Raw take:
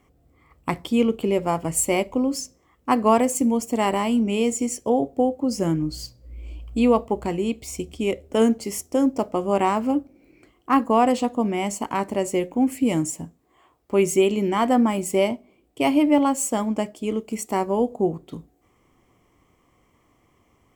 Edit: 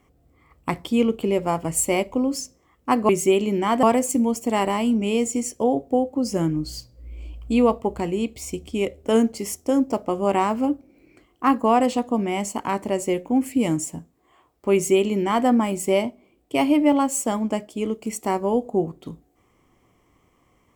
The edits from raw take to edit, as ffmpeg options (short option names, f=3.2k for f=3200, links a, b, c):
-filter_complex "[0:a]asplit=3[a][b][c];[a]atrim=end=3.092[d];[b]atrim=start=13.988:end=14.732[e];[c]atrim=start=3.088[f];[d][e]acrossfade=d=0.004:c1=hsin:c2=hsin[g];[g][f]acrossfade=d=0.004:c1=hsin:c2=hsin"